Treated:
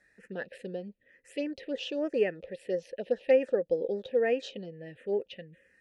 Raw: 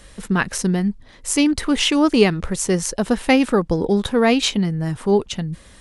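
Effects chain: touch-sensitive phaser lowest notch 500 Hz, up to 4 kHz, full sweep at -11.5 dBFS; vowel filter e

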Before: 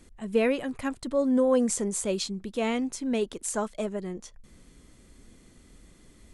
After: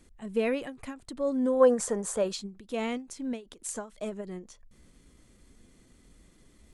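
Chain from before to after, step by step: time-frequency box 1.51–2.19 s, 430–1900 Hz +9 dB; tempo 0.94×; endings held to a fixed fall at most 180 dB/s; trim -4 dB

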